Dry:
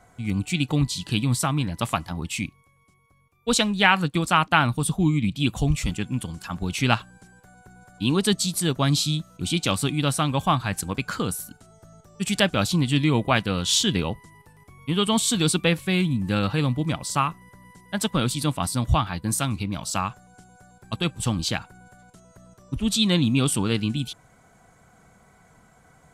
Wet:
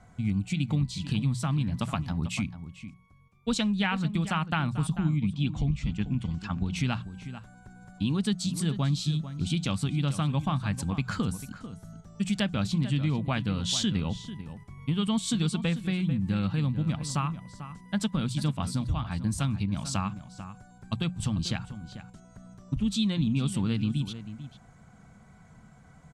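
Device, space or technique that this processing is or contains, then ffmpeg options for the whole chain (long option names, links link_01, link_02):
jukebox: -filter_complex "[0:a]asettb=1/sr,asplit=3[link_01][link_02][link_03];[link_01]atrim=end=5.164[link_04];[link_02]atrim=start=5.16:end=6.76,asetpts=PTS-STARTPTS,afade=type=in:duration=0.004:curve=qsin,afade=type=out:start_time=1.596:duration=0.004:curve=qsin,lowpass=5400[link_05];[link_03]atrim=start=6.756[link_06];[link_04][link_05]acrossfade=duration=0.004:curve1=hsin:curve2=qsin[link_07];[link_07][link_06]acrossfade=duration=0.004:curve1=qsin:curve2=hsin,lowpass=7700,lowshelf=frequency=270:width_type=q:width=1.5:gain=7,acompressor=threshold=-22dB:ratio=4,bandreject=frequency=60:width_type=h:width=6,bandreject=frequency=120:width_type=h:width=6,bandreject=frequency=180:width_type=h:width=6,asplit=2[link_08][link_09];[link_09]adelay=443.1,volume=-12dB,highshelf=frequency=4000:gain=-9.97[link_10];[link_08][link_10]amix=inputs=2:normalize=0,volume=-3dB"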